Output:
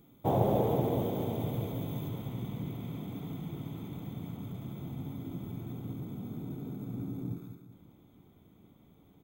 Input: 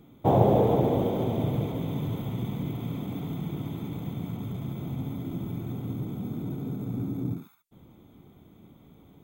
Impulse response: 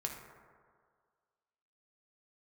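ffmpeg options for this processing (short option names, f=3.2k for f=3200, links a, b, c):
-af "asetnsamples=n=441:p=0,asendcmd='2.09 highshelf g 2.5',highshelf=f=6.5k:g=10.5,aecho=1:1:191|382|573|764|955:0.316|0.139|0.0612|0.0269|0.0119,volume=-7dB"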